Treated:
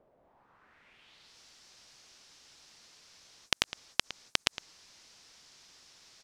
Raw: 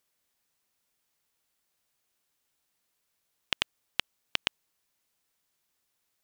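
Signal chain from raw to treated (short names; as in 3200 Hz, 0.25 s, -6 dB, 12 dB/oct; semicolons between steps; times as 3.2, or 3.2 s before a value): outdoor echo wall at 19 m, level -28 dB; low-pass sweep 620 Hz -> 5400 Hz, 0.16–1.37; spectral compressor 2:1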